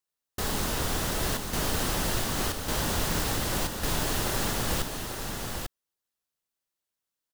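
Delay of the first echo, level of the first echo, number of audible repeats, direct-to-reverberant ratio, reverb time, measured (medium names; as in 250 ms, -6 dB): 844 ms, -5.5 dB, 1, no reverb, no reverb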